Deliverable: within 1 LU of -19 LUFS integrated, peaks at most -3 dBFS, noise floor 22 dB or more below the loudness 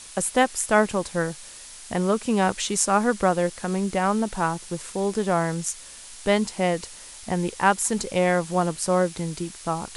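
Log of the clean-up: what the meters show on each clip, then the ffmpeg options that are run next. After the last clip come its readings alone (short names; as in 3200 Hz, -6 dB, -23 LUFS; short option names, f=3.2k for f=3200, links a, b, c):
noise floor -43 dBFS; noise floor target -46 dBFS; loudness -24.0 LUFS; peak -5.5 dBFS; loudness target -19.0 LUFS
-> -af "afftdn=nr=6:nf=-43"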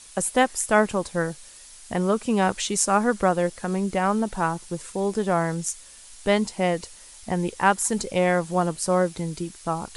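noise floor -47 dBFS; loudness -24.0 LUFS; peak -5.5 dBFS; loudness target -19.0 LUFS
-> -af "volume=5dB,alimiter=limit=-3dB:level=0:latency=1"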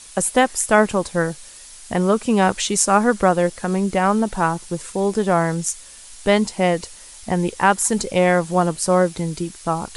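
loudness -19.5 LUFS; peak -3.0 dBFS; noise floor -42 dBFS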